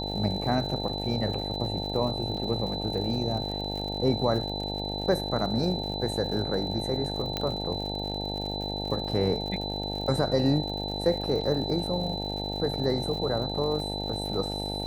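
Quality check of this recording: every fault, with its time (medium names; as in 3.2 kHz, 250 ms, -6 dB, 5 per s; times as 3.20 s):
buzz 50 Hz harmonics 18 -34 dBFS
crackle 120 per s -36 dBFS
whine 4 kHz -34 dBFS
2.37 s: dropout 3.9 ms
7.37 s: pop -14 dBFS
11.41 s: dropout 4.3 ms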